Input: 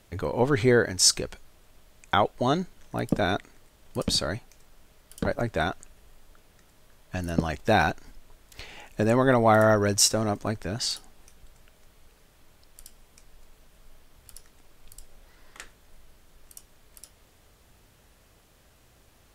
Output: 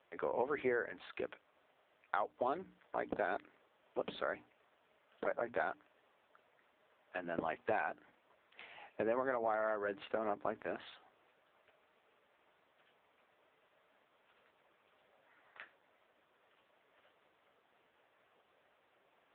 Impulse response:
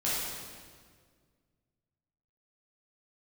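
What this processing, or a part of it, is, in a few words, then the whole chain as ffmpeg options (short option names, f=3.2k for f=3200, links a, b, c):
voicemail: -af "highpass=f=110:w=0.5412,highpass=f=110:w=1.3066,highpass=420,lowpass=2.7k,bandreject=f=60:t=h:w=6,bandreject=f=120:t=h:w=6,bandreject=f=180:t=h:w=6,bandreject=f=240:t=h:w=6,bandreject=f=300:t=h:w=6,acompressor=threshold=-28dB:ratio=8,volume=-2.5dB" -ar 8000 -c:a libopencore_amrnb -b:a 5900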